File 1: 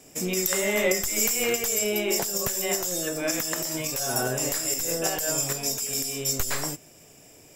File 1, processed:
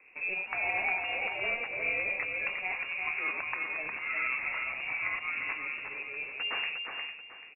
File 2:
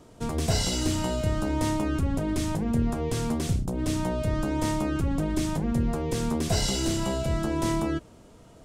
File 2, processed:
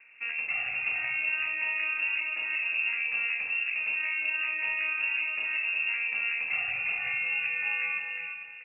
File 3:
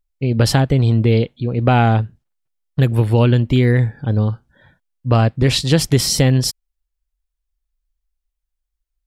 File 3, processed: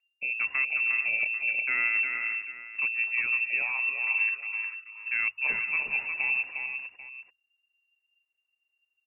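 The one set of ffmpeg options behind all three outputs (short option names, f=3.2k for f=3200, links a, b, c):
-af "areverse,acompressor=threshold=-23dB:ratio=6,areverse,equalizer=f=810:w=3.1:g=4,aecho=1:1:357|453|791:0.562|0.266|0.168,lowpass=f=2.4k:t=q:w=0.5098,lowpass=f=2.4k:t=q:w=0.6013,lowpass=f=2.4k:t=q:w=0.9,lowpass=f=2.4k:t=q:w=2.563,afreqshift=-2800,bandreject=f=50:t=h:w=6,bandreject=f=100:t=h:w=6,bandreject=f=150:t=h:w=6,volume=-4dB"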